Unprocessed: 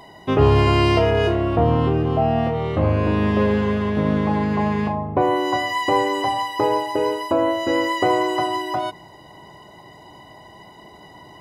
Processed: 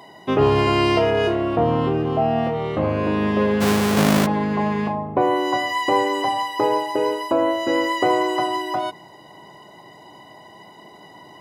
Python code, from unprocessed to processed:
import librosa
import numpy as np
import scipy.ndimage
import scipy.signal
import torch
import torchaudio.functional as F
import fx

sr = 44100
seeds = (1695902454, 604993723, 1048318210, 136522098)

y = fx.halfwave_hold(x, sr, at=(3.6, 4.25), fade=0.02)
y = scipy.signal.sosfilt(scipy.signal.butter(2, 150.0, 'highpass', fs=sr, output='sos'), y)